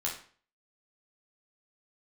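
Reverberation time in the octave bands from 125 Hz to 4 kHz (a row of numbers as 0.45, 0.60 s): 0.45, 0.45, 0.45, 0.45, 0.45, 0.40 s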